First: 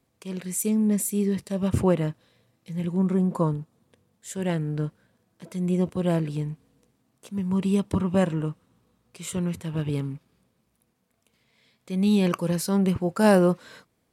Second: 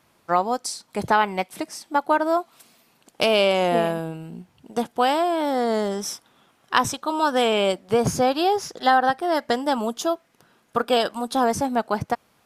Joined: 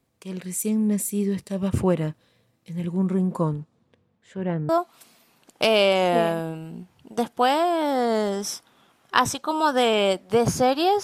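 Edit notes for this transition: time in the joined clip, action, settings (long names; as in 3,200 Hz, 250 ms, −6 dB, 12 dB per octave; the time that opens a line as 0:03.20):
first
0:03.49–0:04.69: low-pass filter 9,600 Hz → 1,200 Hz
0:04.69: continue with second from 0:02.28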